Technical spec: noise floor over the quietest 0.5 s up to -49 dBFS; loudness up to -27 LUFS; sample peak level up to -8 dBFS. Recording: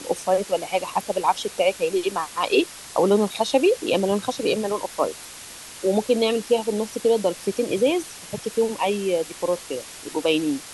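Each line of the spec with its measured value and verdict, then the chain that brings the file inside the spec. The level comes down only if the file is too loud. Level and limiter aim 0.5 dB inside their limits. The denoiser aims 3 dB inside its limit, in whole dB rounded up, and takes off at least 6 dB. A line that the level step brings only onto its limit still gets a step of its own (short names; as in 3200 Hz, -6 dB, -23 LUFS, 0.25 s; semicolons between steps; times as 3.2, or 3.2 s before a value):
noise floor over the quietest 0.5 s -40 dBFS: fail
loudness -23.0 LUFS: fail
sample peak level -6.0 dBFS: fail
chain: denoiser 8 dB, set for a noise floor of -40 dBFS; gain -4.5 dB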